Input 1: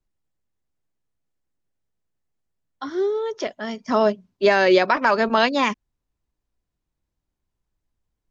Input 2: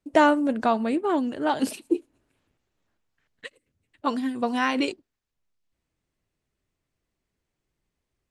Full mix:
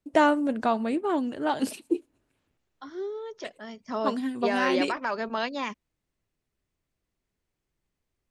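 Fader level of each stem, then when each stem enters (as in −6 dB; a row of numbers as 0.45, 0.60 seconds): −11.5, −2.5 decibels; 0.00, 0.00 seconds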